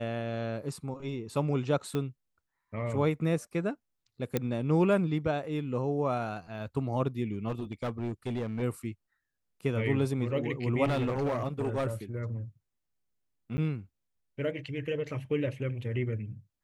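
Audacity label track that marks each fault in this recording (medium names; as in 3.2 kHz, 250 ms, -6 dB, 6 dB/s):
1.950000	1.950000	pop -20 dBFS
4.370000	4.370000	pop -14 dBFS
7.480000	8.630000	clipped -28.5 dBFS
10.840000	11.870000	clipped -25.5 dBFS
13.570000	13.580000	dropout 10 ms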